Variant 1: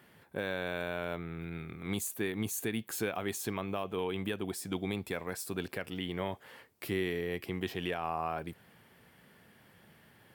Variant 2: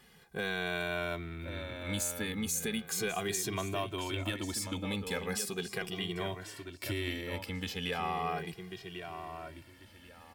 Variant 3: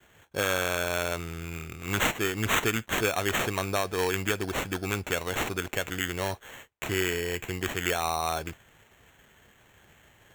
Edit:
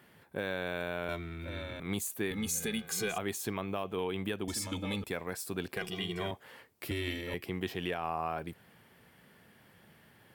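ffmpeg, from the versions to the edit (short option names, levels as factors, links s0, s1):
-filter_complex "[1:a]asplit=5[s0][s1][s2][s3][s4];[0:a]asplit=6[s5][s6][s7][s8][s9][s10];[s5]atrim=end=1.092[s11];[s0]atrim=start=1.088:end=1.802[s12];[s6]atrim=start=1.798:end=2.312[s13];[s1]atrim=start=2.308:end=3.182[s14];[s7]atrim=start=3.178:end=4.482[s15];[s2]atrim=start=4.478:end=5.042[s16];[s8]atrim=start=5.038:end=5.772[s17];[s3]atrim=start=5.768:end=6.312[s18];[s9]atrim=start=6.308:end=6.912[s19];[s4]atrim=start=6.908:end=7.342[s20];[s10]atrim=start=7.338[s21];[s11][s12]acrossfade=d=0.004:c1=hsin:c2=hsin[s22];[s22][s13]acrossfade=d=0.004:c1=hsin:c2=hsin[s23];[s23][s14]acrossfade=d=0.004:c1=hsin:c2=hsin[s24];[s24][s15]acrossfade=d=0.004:c1=hsin:c2=hsin[s25];[s25][s16]acrossfade=d=0.004:c1=hsin:c2=hsin[s26];[s26][s17]acrossfade=d=0.004:c1=hsin:c2=hsin[s27];[s27][s18]acrossfade=d=0.004:c1=hsin:c2=hsin[s28];[s28][s19]acrossfade=d=0.004:c1=hsin:c2=hsin[s29];[s29][s20]acrossfade=d=0.004:c1=hsin:c2=hsin[s30];[s30][s21]acrossfade=d=0.004:c1=hsin:c2=hsin"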